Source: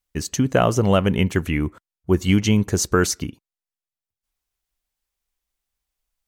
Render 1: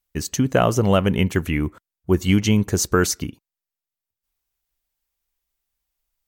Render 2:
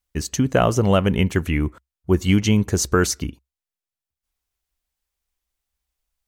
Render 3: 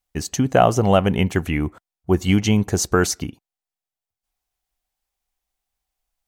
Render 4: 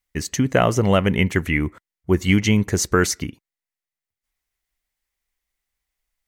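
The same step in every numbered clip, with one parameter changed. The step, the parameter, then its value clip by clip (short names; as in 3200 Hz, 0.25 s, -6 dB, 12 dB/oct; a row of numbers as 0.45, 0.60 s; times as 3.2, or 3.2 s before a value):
bell, frequency: 16000, 65, 750, 2000 Hz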